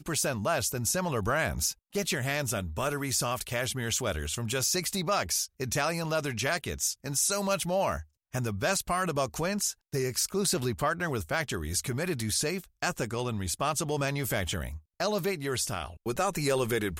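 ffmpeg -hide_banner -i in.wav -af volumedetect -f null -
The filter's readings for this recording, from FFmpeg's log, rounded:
mean_volume: -30.6 dB
max_volume: -13.7 dB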